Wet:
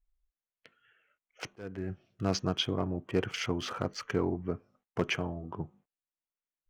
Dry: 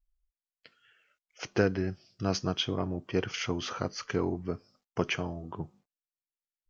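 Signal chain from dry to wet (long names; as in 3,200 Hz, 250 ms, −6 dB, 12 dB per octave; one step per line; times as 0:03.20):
adaptive Wiener filter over 9 samples
gain into a clipping stage and back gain 16 dB
0:01.47–0:01.90: volume swells 521 ms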